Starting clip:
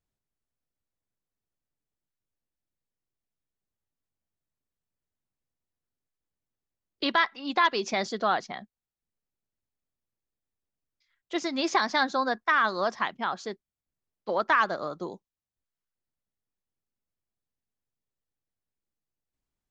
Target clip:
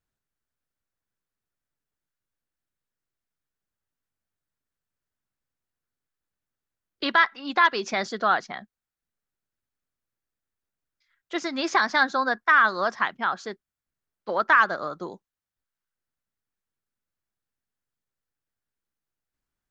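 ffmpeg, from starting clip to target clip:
-af "equalizer=f=1.5k:t=o:w=0.79:g=7.5"

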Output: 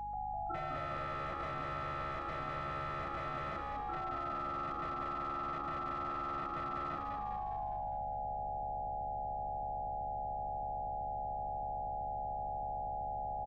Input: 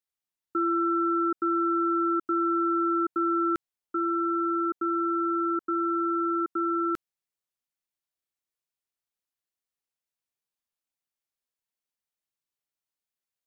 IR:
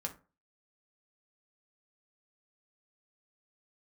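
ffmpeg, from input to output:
-filter_complex "[0:a]afftfilt=real='re':imag='-im':win_size=4096:overlap=0.75,aeval=exprs='val(0)+0.01*sin(2*PI*830*n/s)':c=same,aeval=exprs='(mod(21.1*val(0)+1,2)-1)/21.1':c=same,aeval=exprs='val(0)+0.00224*(sin(2*PI*50*n/s)+sin(2*PI*2*50*n/s)/2+sin(2*PI*3*50*n/s)/3+sin(2*PI*4*50*n/s)/4+sin(2*PI*5*50*n/s)/5)':c=same,acompressor=threshold=-38dB:ratio=12,lowpass=1.4k,aecho=1:1:1.5:0.44,asplit=2[a][b];[b]asplit=8[c][d][e][f][g][h][i][j];[c]adelay=203,afreqshift=-71,volume=-3dB[k];[d]adelay=406,afreqshift=-142,volume=-7.7dB[l];[e]adelay=609,afreqshift=-213,volume=-12.5dB[m];[f]adelay=812,afreqshift=-284,volume=-17.2dB[n];[g]adelay=1015,afreqshift=-355,volume=-21.9dB[o];[h]adelay=1218,afreqshift=-426,volume=-26.7dB[p];[i]adelay=1421,afreqshift=-497,volume=-31.4dB[q];[j]adelay=1624,afreqshift=-568,volume=-36.1dB[r];[k][l][m][n][o][p][q][r]amix=inputs=8:normalize=0[s];[a][s]amix=inputs=2:normalize=0,volume=1dB"

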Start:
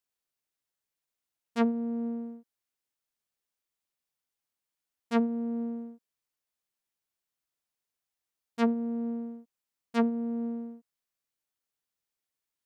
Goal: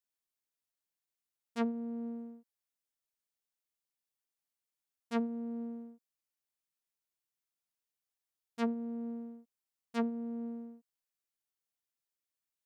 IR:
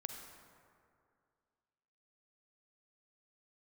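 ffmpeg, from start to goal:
-af "highshelf=f=4.8k:g=4,volume=-7dB"

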